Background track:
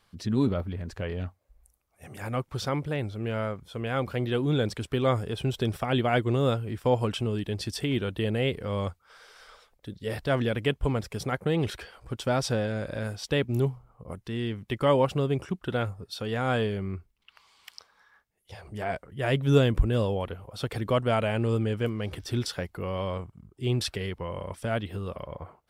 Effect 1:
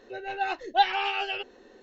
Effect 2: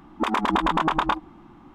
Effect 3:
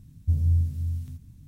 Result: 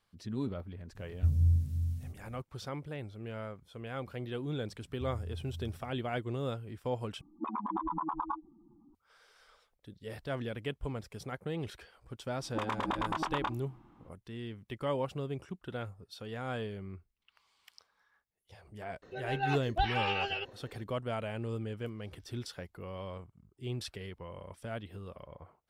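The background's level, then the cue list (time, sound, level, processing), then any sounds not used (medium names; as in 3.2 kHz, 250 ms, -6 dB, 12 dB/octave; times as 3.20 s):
background track -11 dB
0.95 s: add 3 -4 dB
4.73 s: add 3 -14.5 dB + compression, threshold -23 dBFS
7.21 s: replace with 2 -12.5 dB + spectral contrast enhancement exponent 2.6
12.35 s: add 2 -12 dB
19.02 s: add 1 -4 dB + peak limiter -17.5 dBFS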